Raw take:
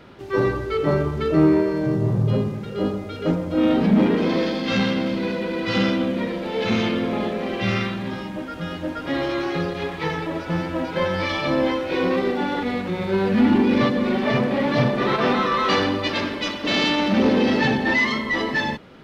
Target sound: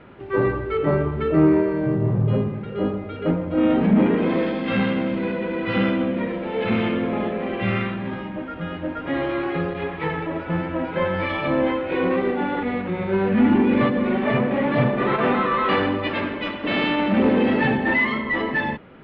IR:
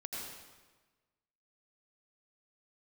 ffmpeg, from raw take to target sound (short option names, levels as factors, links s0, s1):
-af "lowpass=f=2800:w=0.5412,lowpass=f=2800:w=1.3066"